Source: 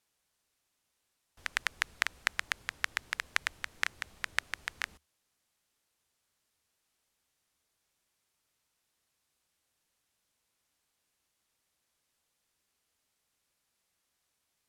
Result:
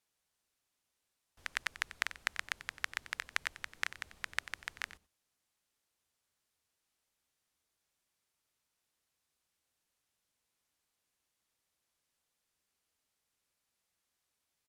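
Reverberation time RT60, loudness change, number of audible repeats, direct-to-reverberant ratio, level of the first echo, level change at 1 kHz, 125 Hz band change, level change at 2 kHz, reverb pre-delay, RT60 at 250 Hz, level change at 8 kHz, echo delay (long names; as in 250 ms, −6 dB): no reverb audible, −4.5 dB, 1, no reverb audible, −15.0 dB, −4.5 dB, −4.5 dB, −4.5 dB, no reverb audible, no reverb audible, −4.5 dB, 92 ms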